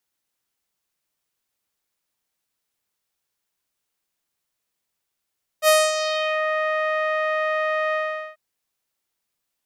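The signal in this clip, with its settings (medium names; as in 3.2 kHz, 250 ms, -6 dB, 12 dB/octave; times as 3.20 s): synth note saw D#5 12 dB/octave, low-pass 1.9 kHz, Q 2.1, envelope 3 oct, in 0.79 s, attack 60 ms, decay 0.24 s, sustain -10.5 dB, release 0.42 s, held 2.32 s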